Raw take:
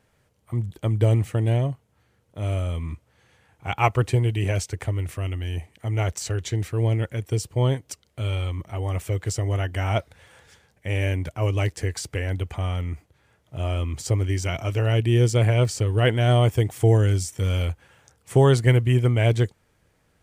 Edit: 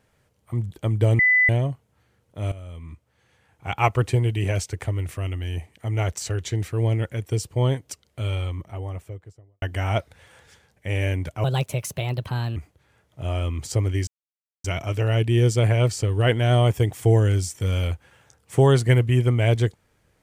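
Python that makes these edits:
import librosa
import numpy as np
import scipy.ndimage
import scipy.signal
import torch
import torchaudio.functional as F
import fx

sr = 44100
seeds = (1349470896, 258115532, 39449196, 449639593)

y = fx.studio_fade_out(x, sr, start_s=8.25, length_s=1.37)
y = fx.edit(y, sr, fx.bleep(start_s=1.19, length_s=0.3, hz=2000.0, db=-14.0),
    fx.fade_in_from(start_s=2.52, length_s=1.29, floor_db=-15.5),
    fx.speed_span(start_s=11.44, length_s=1.47, speed=1.31),
    fx.insert_silence(at_s=14.42, length_s=0.57), tone=tone)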